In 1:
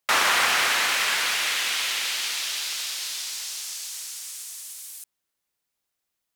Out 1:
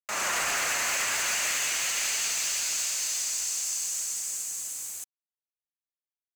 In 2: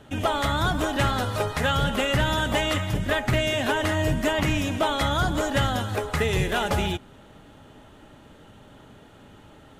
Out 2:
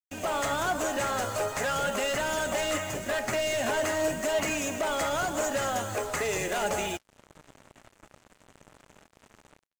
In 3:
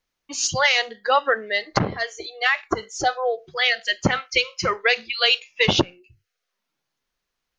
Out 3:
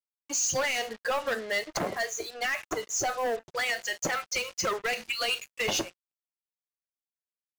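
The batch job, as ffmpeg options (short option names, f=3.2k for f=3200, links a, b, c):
-filter_complex "[0:a]superequalizer=8b=1.58:13b=0.501:15b=2.82,acrossover=split=270[a][b];[a]acompressor=threshold=-39dB:ratio=16[c];[b]alimiter=limit=-15dB:level=0:latency=1:release=40[d];[c][d]amix=inputs=2:normalize=0,dynaudnorm=f=110:g=5:m=8.5dB,asoftclip=type=hard:threshold=-14.5dB,flanger=delay=4.4:depth=4.9:regen=70:speed=0.43:shape=sinusoidal,acrusher=bits=5:mix=0:aa=0.5,volume=-5.5dB"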